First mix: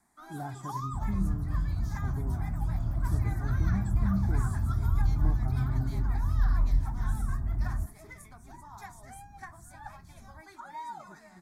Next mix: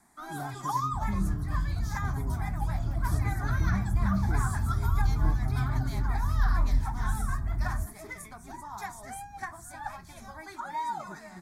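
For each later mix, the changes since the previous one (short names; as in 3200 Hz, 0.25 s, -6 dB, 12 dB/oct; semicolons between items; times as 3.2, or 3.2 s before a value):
first sound +7.5 dB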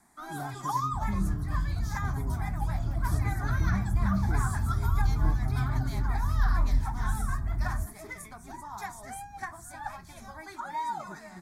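none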